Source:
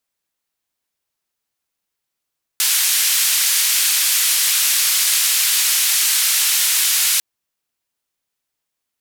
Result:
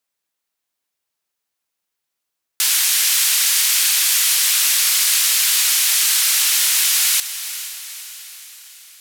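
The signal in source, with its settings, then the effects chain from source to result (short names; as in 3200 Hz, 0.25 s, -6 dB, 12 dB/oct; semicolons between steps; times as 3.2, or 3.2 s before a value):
noise band 2100–14000 Hz, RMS -16.5 dBFS 4.60 s
low shelf 210 Hz -7 dB; diffused feedback echo 0.47 s, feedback 53%, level -12.5 dB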